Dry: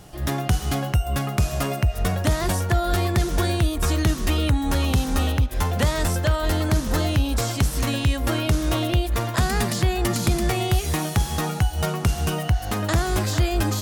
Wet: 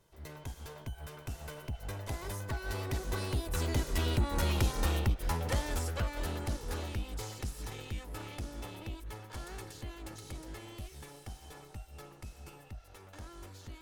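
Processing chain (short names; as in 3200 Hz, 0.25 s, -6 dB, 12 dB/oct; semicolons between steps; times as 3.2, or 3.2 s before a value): minimum comb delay 2.1 ms; Doppler pass-by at 4.6, 28 m/s, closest 27 m; gain -7 dB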